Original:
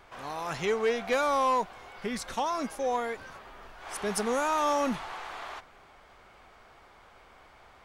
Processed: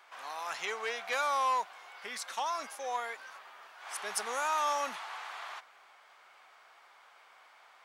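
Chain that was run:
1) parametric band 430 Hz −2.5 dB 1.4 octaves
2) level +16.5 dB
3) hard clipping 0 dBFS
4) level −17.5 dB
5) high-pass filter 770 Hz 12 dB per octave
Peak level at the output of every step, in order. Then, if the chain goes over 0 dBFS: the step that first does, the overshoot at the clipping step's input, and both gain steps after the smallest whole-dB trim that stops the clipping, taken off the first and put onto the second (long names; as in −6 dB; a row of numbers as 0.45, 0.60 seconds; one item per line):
−18.5, −2.0, −2.0, −19.5, −20.0 dBFS
no step passes full scale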